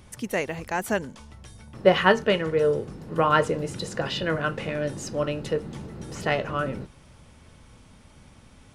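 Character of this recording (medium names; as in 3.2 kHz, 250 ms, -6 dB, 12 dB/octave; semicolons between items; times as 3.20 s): noise floor -52 dBFS; spectral tilt -3.5 dB/octave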